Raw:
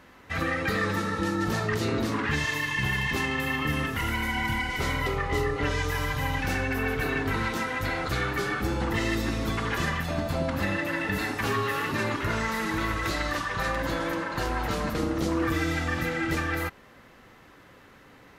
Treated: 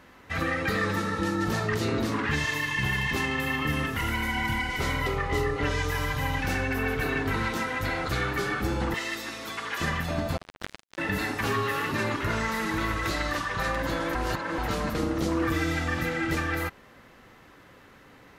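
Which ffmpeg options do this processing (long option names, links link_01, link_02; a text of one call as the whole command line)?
ffmpeg -i in.wav -filter_complex "[0:a]asettb=1/sr,asplit=3[link_01][link_02][link_03];[link_01]atrim=end=8.944[link_04];[link_02]atrim=start=8.94:end=9.81,asetpts=PTS-STARTPTS,afade=type=in:duration=0.004:curve=qsin,afade=type=out:start_time=0.866:duration=0.004:curve=qsin,highpass=frequency=1100:poles=1[link_05];[link_03]atrim=start=9.806[link_06];[link_04][link_05]acrossfade=duration=0.004:curve1=hsin:curve2=qsin[link_07];[link_07][link_06]acrossfade=duration=0.004:curve1=qsin:curve2=hsin,asettb=1/sr,asplit=3[link_08][link_09][link_10];[link_08]atrim=end=10.374[link_11];[link_09]atrim=start=10.37:end=10.98,asetpts=PTS-STARTPTS,afade=type=in:duration=0.004:curve=qsin,afade=type=out:start_time=0.606:duration=0.004:curve=qsin,acrusher=bits=2:mix=0:aa=0.5[link_12];[link_10]atrim=start=10.976[link_13];[link_11][link_12]acrossfade=duration=0.004:curve1=hsin:curve2=qsin[link_14];[link_14][link_13]acrossfade=duration=0.004:curve1=qsin:curve2=hsin,asplit=3[link_15][link_16][link_17];[link_15]atrim=end=14.152[link_18];[link_16]atrim=start=14.148:end=14.582,asetpts=PTS-STARTPTS,areverse[link_19];[link_17]atrim=start=14.578[link_20];[link_18][link_19]acrossfade=duration=0.004:curve1=hsin:curve2=hsin[link_21];[link_21][link_20]acrossfade=duration=0.004:curve1=hsin:curve2=hsin" out.wav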